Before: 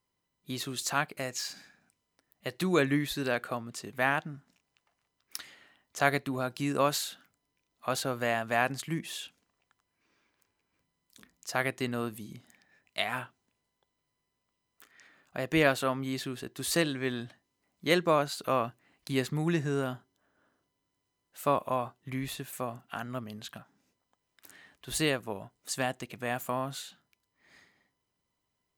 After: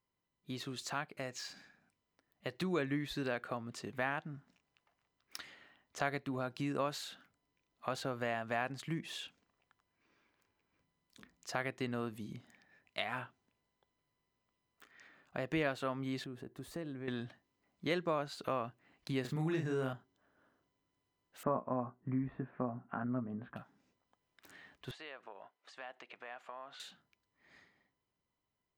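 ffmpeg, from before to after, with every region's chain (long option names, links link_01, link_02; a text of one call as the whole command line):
ffmpeg -i in.wav -filter_complex "[0:a]asettb=1/sr,asplit=3[link_01][link_02][link_03];[link_01]atrim=end=16.244[link_04];[link_02]atrim=start=16.24:end=17.08,asetpts=PTS-STARTPTS,afade=type=in:duration=0.004:curve=qsin,afade=type=out:start_time=0.836:duration=0.004:curve=qsin,equalizer=frequency=4200:width=0.39:gain=-13,acompressor=threshold=-45dB:ratio=2:attack=3.2:release=140:knee=1:detection=peak[link_05];[link_03]atrim=start=17.076[link_06];[link_04][link_05]acrossfade=duration=0.004:curve1=hsin:curve2=qsin[link_07];[link_07][link_06]acrossfade=duration=0.004:curve1=qsin:curve2=hsin,asettb=1/sr,asplit=3[link_08][link_09][link_10];[link_08]atrim=end=19.214[link_11];[link_09]atrim=start=19.21:end=19.93,asetpts=PTS-STARTPTS,afade=type=in:duration=0.004:curve=qsin,afade=type=out:start_time=0.716:duration=0.004:curve=qsin,deesser=0.75,highshelf=frequency=11000:gain=8.5,asplit=2[link_12][link_13];[link_13]adelay=38,volume=-4dB[link_14];[link_12][link_14]amix=inputs=2:normalize=0,atrim=end_sample=31752[link_15];[link_10]atrim=start=19.926[link_16];[link_11][link_15]acrossfade=duration=0.004:curve1=hsin:curve2=qsin[link_17];[link_17][link_16]acrossfade=duration=0.004:curve1=qsin:curve2=hsin,asettb=1/sr,asplit=3[link_18][link_19][link_20];[link_18]atrim=end=21.434[link_21];[link_19]atrim=start=21.43:end=23.56,asetpts=PTS-STARTPTS,afade=type=in:duration=0.004:curve=qsin,afade=type=out:start_time=2.126:duration=0.004:curve=qsin,lowpass=frequency=1600:width=0.5412,lowpass=frequency=1600:width=1.3066,equalizer=frequency=230:width_type=o:width=1:gain=8,asplit=2[link_22][link_23];[link_23]adelay=16,volume=-6.5dB[link_24];[link_22][link_24]amix=inputs=2:normalize=0,atrim=end_sample=93933[link_25];[link_20]atrim=start=23.556[link_26];[link_21][link_25]acrossfade=duration=0.004:curve1=hsin:curve2=qsin[link_27];[link_27][link_26]acrossfade=duration=0.004:curve1=qsin:curve2=hsin,asettb=1/sr,asplit=3[link_28][link_29][link_30];[link_28]atrim=end=24.914[link_31];[link_29]atrim=start=24.91:end=26.8,asetpts=PTS-STARTPTS,afade=type=in:duration=0.004:curve=qsin,afade=type=out:start_time=1.886:duration=0.004:curve=qsin,acompressor=threshold=-39dB:ratio=6:attack=3.2:release=140:knee=1:detection=peak,highpass=660,lowpass=3300[link_32];[link_30]atrim=start=26.796[link_33];[link_31][link_32]acrossfade=duration=0.004:curve1=hsin:curve2=qsin[link_34];[link_34][link_33]acrossfade=duration=0.004:curve1=qsin:curve2=hsin,dynaudnorm=framelen=650:gausssize=7:maxgain=4dB,equalizer=frequency=12000:width=0.48:gain=-13,acompressor=threshold=-33dB:ratio=2,volume=-4.5dB" out.wav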